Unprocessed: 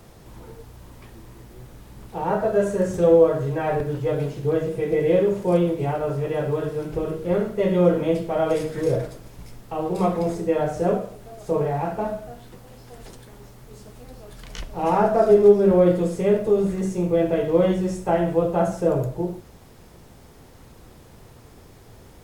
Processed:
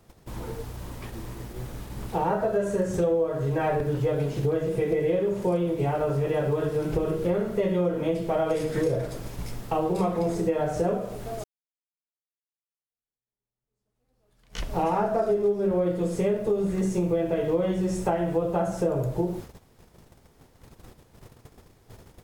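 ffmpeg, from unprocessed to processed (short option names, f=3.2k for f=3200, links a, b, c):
-filter_complex "[0:a]asplit=2[a][b];[a]atrim=end=11.44,asetpts=PTS-STARTPTS,afade=t=out:st=11.436:d=0.004:c=hsin[c];[b]atrim=start=11.44,asetpts=PTS-STARTPTS,afade=t=in:d=3.34:c=exp[d];[c][d]concat=n=2:v=0:a=1,acompressor=threshold=-29dB:ratio=6,agate=range=-17dB:threshold=-44dB:ratio=16:detection=peak,volume=6.5dB"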